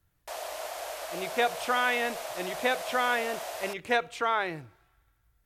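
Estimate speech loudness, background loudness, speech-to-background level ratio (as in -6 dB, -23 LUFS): -29.5 LUFS, -37.5 LUFS, 8.0 dB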